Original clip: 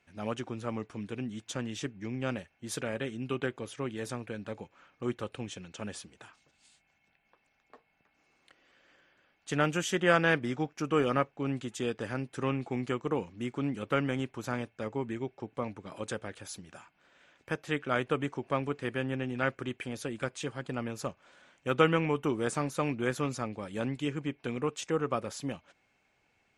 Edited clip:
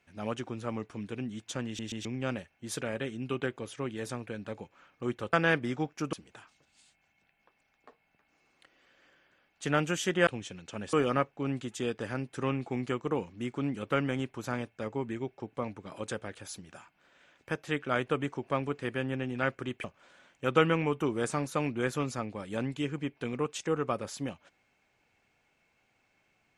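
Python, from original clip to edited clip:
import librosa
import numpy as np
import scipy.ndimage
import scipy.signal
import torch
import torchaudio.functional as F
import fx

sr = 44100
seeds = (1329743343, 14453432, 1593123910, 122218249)

y = fx.edit(x, sr, fx.stutter_over(start_s=1.66, slice_s=0.13, count=3),
    fx.swap(start_s=5.33, length_s=0.66, other_s=10.13, other_length_s=0.8),
    fx.cut(start_s=19.84, length_s=1.23), tone=tone)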